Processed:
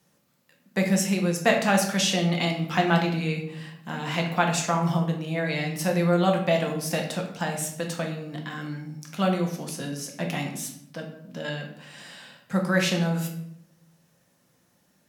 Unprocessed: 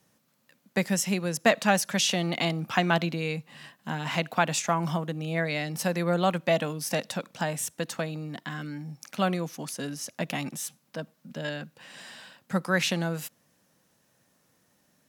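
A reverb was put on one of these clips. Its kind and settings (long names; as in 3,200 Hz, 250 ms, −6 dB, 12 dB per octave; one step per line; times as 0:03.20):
rectangular room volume 160 cubic metres, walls mixed, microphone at 0.83 metres
level −1 dB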